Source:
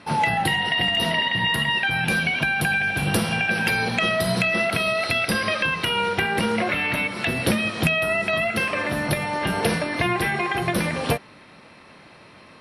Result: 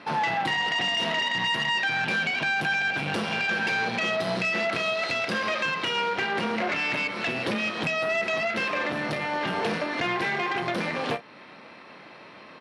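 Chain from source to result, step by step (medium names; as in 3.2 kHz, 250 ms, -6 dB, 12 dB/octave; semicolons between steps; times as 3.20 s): doubling 33 ms -12.5 dB; in parallel at 0 dB: compression, threshold -31 dBFS, peak gain reduction 14.5 dB; on the sum: valve stage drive 20 dB, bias 0.65; Bessel high-pass 250 Hz, order 2; distance through air 110 m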